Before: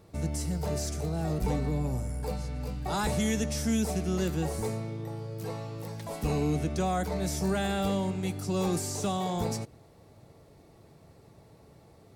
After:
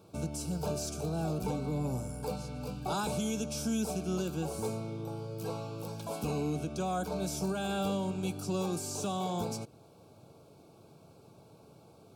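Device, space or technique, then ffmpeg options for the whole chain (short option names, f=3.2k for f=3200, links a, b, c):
PA system with an anti-feedback notch: -af "highpass=120,asuperstop=centerf=1900:order=12:qfactor=3.2,alimiter=limit=-24dB:level=0:latency=1:release=412"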